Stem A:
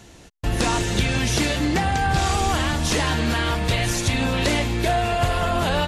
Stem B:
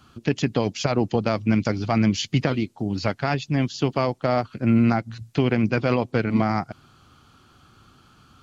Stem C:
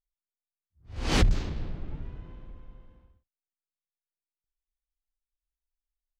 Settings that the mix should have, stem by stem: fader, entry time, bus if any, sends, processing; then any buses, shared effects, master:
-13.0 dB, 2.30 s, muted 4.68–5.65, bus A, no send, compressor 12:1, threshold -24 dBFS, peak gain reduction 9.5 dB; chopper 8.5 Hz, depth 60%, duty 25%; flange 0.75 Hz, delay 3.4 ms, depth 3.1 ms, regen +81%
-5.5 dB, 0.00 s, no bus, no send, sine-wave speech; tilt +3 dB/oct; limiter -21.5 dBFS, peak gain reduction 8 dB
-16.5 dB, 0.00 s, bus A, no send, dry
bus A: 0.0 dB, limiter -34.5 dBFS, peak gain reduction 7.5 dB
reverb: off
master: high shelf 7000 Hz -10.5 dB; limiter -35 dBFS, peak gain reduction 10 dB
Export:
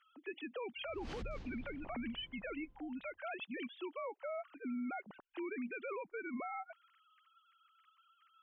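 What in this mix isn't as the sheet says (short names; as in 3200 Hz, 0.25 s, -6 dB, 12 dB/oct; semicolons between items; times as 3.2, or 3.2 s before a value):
stem A: muted; stem B -5.5 dB -> -12.0 dB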